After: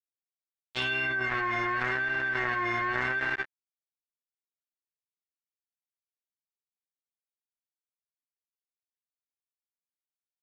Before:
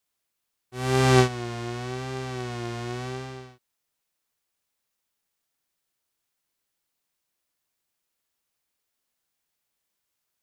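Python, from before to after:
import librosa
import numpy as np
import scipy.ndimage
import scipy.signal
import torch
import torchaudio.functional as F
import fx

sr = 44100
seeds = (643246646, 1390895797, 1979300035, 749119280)

y = fx.stiff_resonator(x, sr, f0_hz=320.0, decay_s=0.42, stiffness=0.03)
y = np.sign(y) * np.maximum(np.abs(y) - 10.0 ** (-57.0 / 20.0), 0.0)
y = fx.filter_sweep_lowpass(y, sr, from_hz=5700.0, to_hz=1800.0, start_s=0.39, end_s=1.19, q=4.4)
y = fx.env_flatten(y, sr, amount_pct=100)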